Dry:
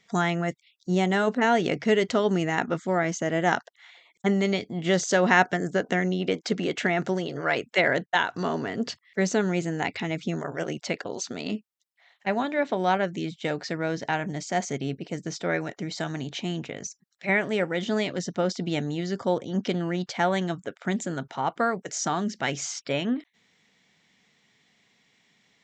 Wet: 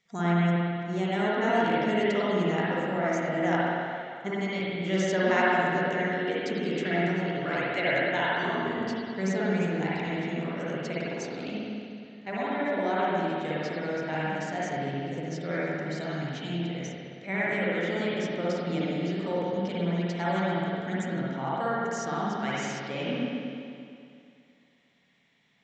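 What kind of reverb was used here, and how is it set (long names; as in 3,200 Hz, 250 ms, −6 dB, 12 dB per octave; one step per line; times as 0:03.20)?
spring reverb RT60 2.4 s, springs 52/58 ms, chirp 45 ms, DRR −8 dB
level −10.5 dB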